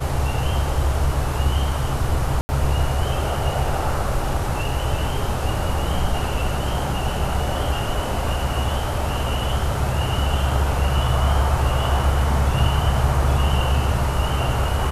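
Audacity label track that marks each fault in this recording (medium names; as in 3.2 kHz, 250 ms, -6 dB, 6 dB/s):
2.410000	2.490000	dropout 80 ms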